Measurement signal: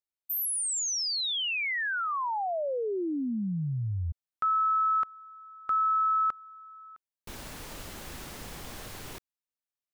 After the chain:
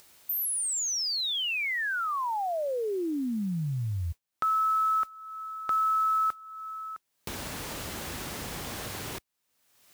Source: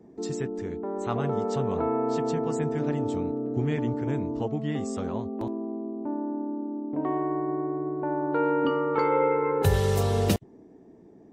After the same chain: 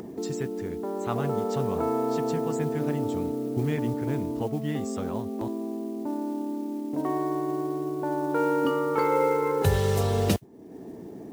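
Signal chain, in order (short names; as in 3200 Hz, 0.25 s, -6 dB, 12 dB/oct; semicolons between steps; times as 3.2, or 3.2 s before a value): HPF 57 Hz 12 dB/oct; upward compressor, threshold -29 dBFS; modulation noise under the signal 27 dB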